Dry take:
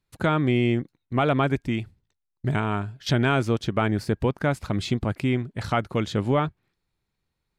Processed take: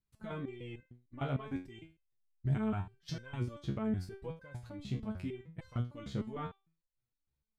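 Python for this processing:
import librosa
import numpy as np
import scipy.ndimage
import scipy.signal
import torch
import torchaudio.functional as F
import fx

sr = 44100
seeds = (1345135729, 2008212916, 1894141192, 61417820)

y = fx.level_steps(x, sr, step_db=14)
y = fx.low_shelf(y, sr, hz=190.0, db=12.0)
y = fx.resonator_held(y, sr, hz=6.6, low_hz=68.0, high_hz=520.0)
y = y * librosa.db_to_amplitude(-2.5)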